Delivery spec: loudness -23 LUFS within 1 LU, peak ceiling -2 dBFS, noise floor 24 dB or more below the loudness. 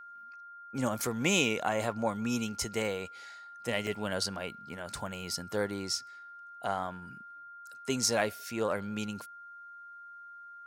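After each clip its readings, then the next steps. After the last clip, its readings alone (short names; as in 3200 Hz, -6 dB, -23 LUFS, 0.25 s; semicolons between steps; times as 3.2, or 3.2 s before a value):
dropouts 1; longest dropout 1.7 ms; steady tone 1400 Hz; tone level -46 dBFS; loudness -33.0 LUFS; peak -12.5 dBFS; loudness target -23.0 LUFS
-> interpolate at 3.87, 1.7 ms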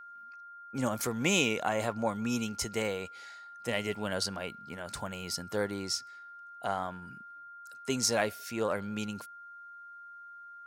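dropouts 0; steady tone 1400 Hz; tone level -46 dBFS
-> notch 1400 Hz, Q 30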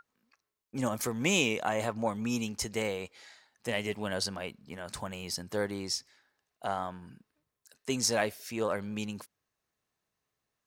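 steady tone none; loudness -33.0 LUFS; peak -13.0 dBFS; loudness target -23.0 LUFS
-> gain +10 dB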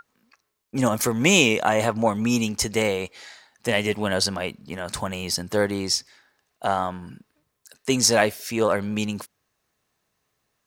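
loudness -23.0 LUFS; peak -3.0 dBFS; noise floor -75 dBFS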